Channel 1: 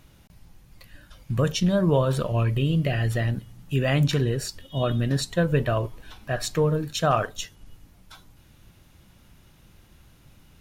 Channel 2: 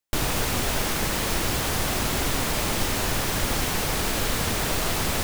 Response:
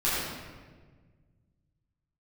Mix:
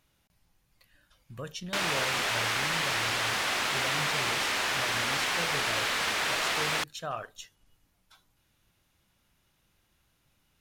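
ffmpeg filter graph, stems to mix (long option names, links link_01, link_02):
-filter_complex "[0:a]lowshelf=frequency=440:gain=-9.5,volume=-11dB[link_01];[1:a]bandpass=frequency=2100:width_type=q:width=0.72:csg=0,adelay=1600,volume=2.5dB[link_02];[link_01][link_02]amix=inputs=2:normalize=0"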